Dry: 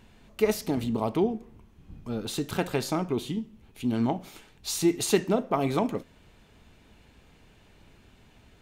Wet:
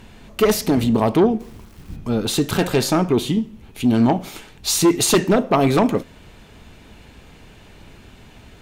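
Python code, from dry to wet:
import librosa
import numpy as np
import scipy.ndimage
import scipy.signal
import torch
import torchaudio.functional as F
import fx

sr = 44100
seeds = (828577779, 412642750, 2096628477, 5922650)

y = fx.fold_sine(x, sr, drive_db=9, ceiling_db=-8.0)
y = fx.quant_dither(y, sr, seeds[0], bits=8, dither='none', at=(1.39, 1.95), fade=0.02)
y = y * librosa.db_to_amplitude(-1.0)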